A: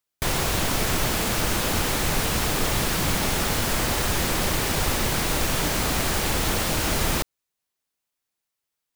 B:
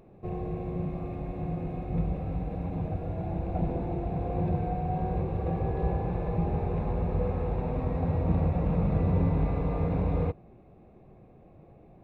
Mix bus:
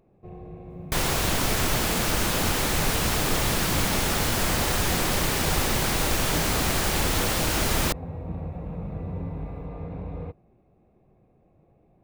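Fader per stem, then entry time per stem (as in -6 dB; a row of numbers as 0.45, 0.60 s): -0.5, -7.5 dB; 0.70, 0.00 s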